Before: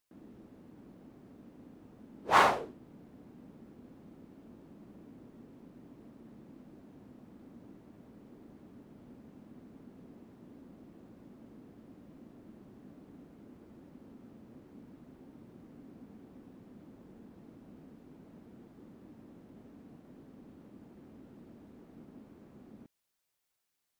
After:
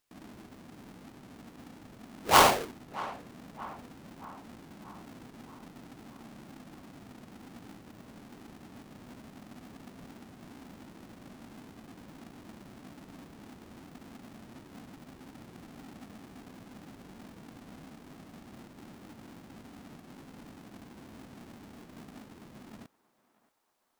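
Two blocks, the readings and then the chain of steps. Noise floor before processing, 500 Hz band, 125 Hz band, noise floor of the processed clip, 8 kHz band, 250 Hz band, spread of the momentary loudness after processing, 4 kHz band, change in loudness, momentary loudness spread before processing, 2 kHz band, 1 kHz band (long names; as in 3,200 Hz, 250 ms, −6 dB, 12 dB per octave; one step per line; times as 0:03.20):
−83 dBFS, +4.5 dB, +5.5 dB, −69 dBFS, +14.5 dB, +4.0 dB, 27 LU, +9.5 dB, +0.5 dB, 9 LU, +2.5 dB, +3.5 dB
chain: each half-wave held at its own peak
feedback echo with a band-pass in the loop 629 ms, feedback 58%, band-pass 1,000 Hz, level −17 dB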